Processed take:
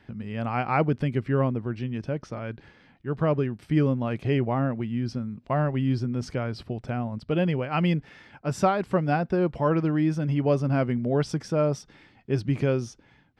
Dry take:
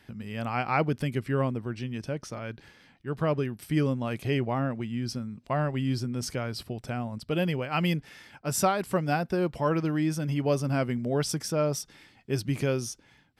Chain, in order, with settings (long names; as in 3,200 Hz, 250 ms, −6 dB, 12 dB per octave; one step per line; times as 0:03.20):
head-to-tape spacing loss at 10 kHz 21 dB
level +4 dB